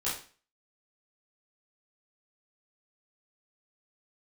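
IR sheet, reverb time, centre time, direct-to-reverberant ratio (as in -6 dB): 0.40 s, 39 ms, -10.0 dB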